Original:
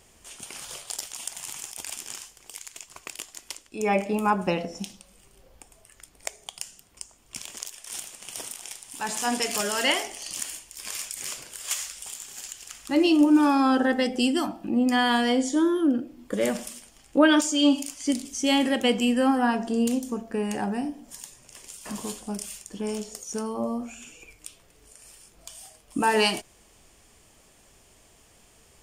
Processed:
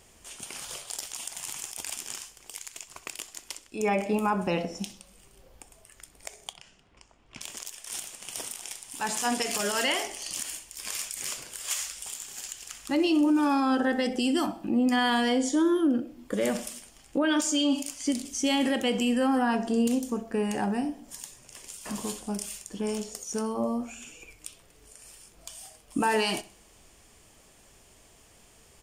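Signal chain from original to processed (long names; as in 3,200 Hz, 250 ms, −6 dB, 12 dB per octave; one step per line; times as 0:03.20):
brickwall limiter −17 dBFS, peak gain reduction 11 dB
0:06.53–0:07.41: low-pass filter 2,900 Hz 12 dB per octave
repeating echo 64 ms, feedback 42%, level −19 dB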